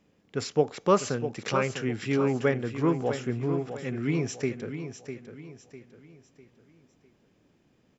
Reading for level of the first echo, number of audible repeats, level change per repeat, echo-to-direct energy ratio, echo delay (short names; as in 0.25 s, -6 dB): -9.5 dB, 4, -8.5 dB, -9.0 dB, 0.651 s